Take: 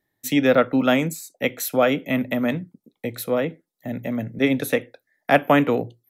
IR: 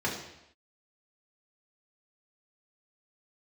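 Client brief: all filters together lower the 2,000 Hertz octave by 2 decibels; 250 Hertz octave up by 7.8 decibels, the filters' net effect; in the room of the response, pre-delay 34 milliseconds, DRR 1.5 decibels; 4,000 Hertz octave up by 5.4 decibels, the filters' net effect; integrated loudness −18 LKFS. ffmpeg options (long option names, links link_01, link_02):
-filter_complex "[0:a]equalizer=frequency=250:width_type=o:gain=8.5,equalizer=frequency=2000:width_type=o:gain=-5,equalizer=frequency=4000:width_type=o:gain=9,asplit=2[link_01][link_02];[1:a]atrim=start_sample=2205,adelay=34[link_03];[link_02][link_03]afir=irnorm=-1:irlink=0,volume=-10.5dB[link_04];[link_01][link_04]amix=inputs=2:normalize=0,volume=-4dB"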